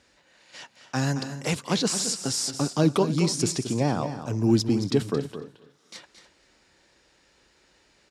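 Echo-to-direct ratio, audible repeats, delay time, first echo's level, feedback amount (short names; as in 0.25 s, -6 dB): -9.5 dB, 3, 0.223 s, -10.5 dB, no steady repeat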